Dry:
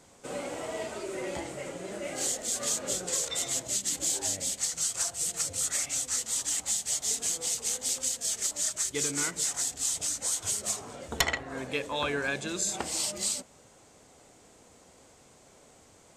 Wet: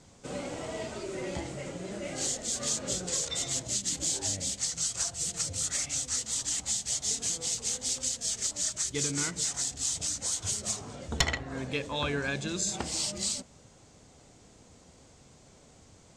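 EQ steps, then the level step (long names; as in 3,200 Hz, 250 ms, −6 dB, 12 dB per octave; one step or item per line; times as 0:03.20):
low-pass filter 5,300 Hz 12 dB per octave
bass and treble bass +10 dB, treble +9 dB
−2.5 dB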